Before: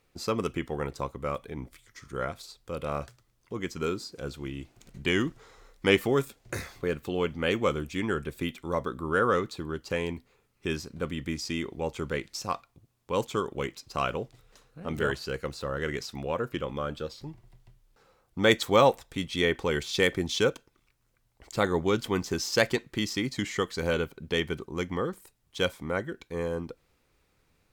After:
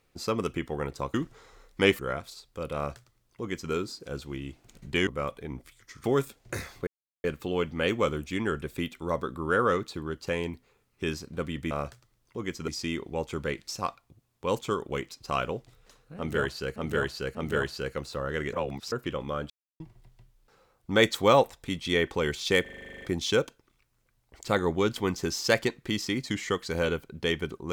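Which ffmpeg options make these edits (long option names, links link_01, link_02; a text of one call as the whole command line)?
ffmpeg -i in.wav -filter_complex "[0:a]asplit=24[link_01][link_02][link_03][link_04][link_05][link_06][link_07][link_08][link_09][link_10][link_11][link_12][link_13][link_14][link_15][link_16][link_17][link_18][link_19][link_20][link_21][link_22][link_23][link_24];[link_01]atrim=end=1.142[link_25];[link_02]atrim=start=5.188:end=6.042[link_26];[link_03]atrim=start=2.108:end=5.192[link_27];[link_04]atrim=start=1.138:end=2.112[link_28];[link_05]atrim=start=6.038:end=6.87,asetpts=PTS-STARTPTS,afade=type=out:start_time=0.828:duration=0.004:curve=hsin,apad=pad_dur=0.37[link_29];[link_06]atrim=start=6.87:end=11.342,asetpts=PTS-STARTPTS,afade=type=in:duration=0.004:curve=hsin[link_30];[link_07]atrim=start=2.868:end=3.842[link_31];[link_08]atrim=start=11.338:end=15.422[link_32];[link_09]atrim=start=14.828:end=15.422[link_33];[link_10]atrim=start=14.828:end=16.012[link_34];[link_11]atrim=start=16.008:end=16.402,asetpts=PTS-STARTPTS,areverse[link_35];[link_12]atrim=start=16.398:end=16.98,asetpts=PTS-STARTPTS,afade=type=out:start_time=0.578:duration=0.004:curve=hsin[link_36];[link_13]atrim=start=16.98:end=17.28,asetpts=PTS-STARTPTS,volume=0[link_37];[link_14]atrim=start=17.28:end=20.142,asetpts=PTS-STARTPTS,afade=type=in:duration=0.004:curve=hsin[link_38];[link_15]atrim=start=20.098:end=20.142[link_39];[link_16]atrim=start=20.098:end=20.142[link_40];[link_17]atrim=start=20.098:end=20.142[link_41];[link_18]atrim=start=20.098:end=20.142[link_42];[link_19]atrim=start=20.098:end=20.142[link_43];[link_20]atrim=start=20.098:end=20.142[link_44];[link_21]atrim=start=20.098:end=20.142[link_45];[link_22]atrim=start=20.098:end=20.142[link_46];[link_23]atrim=start=20.098:end=20.142[link_47];[link_24]atrim=start=20.098[link_48];[link_25][link_26]acrossfade=duration=0.004:curve1=hsin:curve2=hsin[link_49];[link_49][link_27]acrossfade=duration=0.004:curve1=hsin:curve2=hsin[link_50];[link_50][link_28]acrossfade=duration=0.004:curve1=hsin:curve2=hsin[link_51];[link_29][link_30]concat=n=2:v=0:a=1[link_52];[link_51][link_52]acrossfade=duration=0.004:curve1=hsin:curve2=hsin[link_53];[link_53][link_31]acrossfade=duration=0.004:curve1=hsin:curve2=hsin[link_54];[link_54][link_32]acrossfade=duration=0.004:curve1=hsin:curve2=hsin[link_55];[link_55][link_33]acrossfade=duration=0.004:curve1=hsin:curve2=hsin[link_56];[link_56][link_34]acrossfade=duration=0.004:curve1=hsin:curve2=hsin[link_57];[link_57][link_35]acrossfade=duration=0.004:curve1=hsin:curve2=hsin[link_58];[link_36][link_37][link_38]concat=n=3:v=0:a=1[link_59];[link_58][link_59]acrossfade=duration=0.004:curve1=hsin:curve2=hsin[link_60];[link_60][link_39]acrossfade=duration=0.004:curve1=hsin:curve2=hsin[link_61];[link_61][link_40]acrossfade=duration=0.004:curve1=hsin:curve2=hsin[link_62];[link_62][link_41]acrossfade=duration=0.004:curve1=hsin:curve2=hsin[link_63];[link_63][link_42]acrossfade=duration=0.004:curve1=hsin:curve2=hsin[link_64];[link_64][link_43]acrossfade=duration=0.004:curve1=hsin:curve2=hsin[link_65];[link_65][link_44]acrossfade=duration=0.004:curve1=hsin:curve2=hsin[link_66];[link_66][link_45]acrossfade=duration=0.004:curve1=hsin:curve2=hsin[link_67];[link_67][link_46]acrossfade=duration=0.004:curve1=hsin:curve2=hsin[link_68];[link_68][link_47]acrossfade=duration=0.004:curve1=hsin:curve2=hsin[link_69];[link_69][link_48]acrossfade=duration=0.004:curve1=hsin:curve2=hsin" out.wav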